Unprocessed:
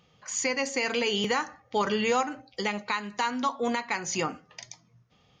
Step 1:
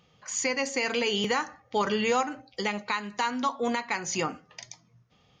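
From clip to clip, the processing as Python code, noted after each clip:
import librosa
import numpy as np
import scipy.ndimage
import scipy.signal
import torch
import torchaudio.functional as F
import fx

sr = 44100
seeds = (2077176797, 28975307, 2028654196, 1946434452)

y = x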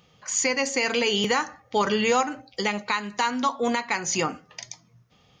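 y = fx.high_shelf(x, sr, hz=7500.0, db=5.5)
y = y * librosa.db_to_amplitude(3.5)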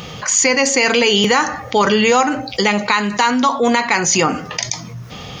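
y = fx.env_flatten(x, sr, amount_pct=50)
y = y * librosa.db_to_amplitude(7.5)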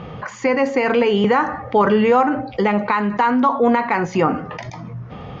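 y = scipy.signal.sosfilt(scipy.signal.butter(2, 1400.0, 'lowpass', fs=sr, output='sos'), x)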